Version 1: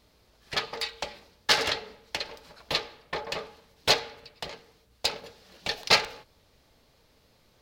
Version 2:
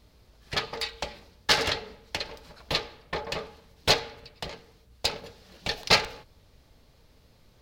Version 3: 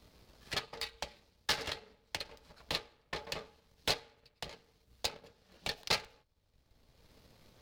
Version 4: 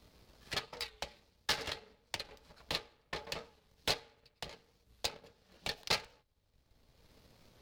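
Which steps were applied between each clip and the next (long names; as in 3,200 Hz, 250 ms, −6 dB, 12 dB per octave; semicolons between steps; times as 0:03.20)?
low-shelf EQ 180 Hz +9.5 dB
power curve on the samples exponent 1.4; multiband upward and downward compressor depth 70%; level −1.5 dB
wow of a warped record 45 rpm, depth 100 cents; level −1 dB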